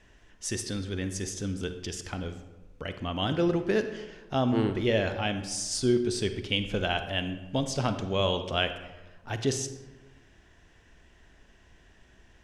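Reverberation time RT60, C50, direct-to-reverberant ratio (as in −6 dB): 1.2 s, 10.0 dB, 9.0 dB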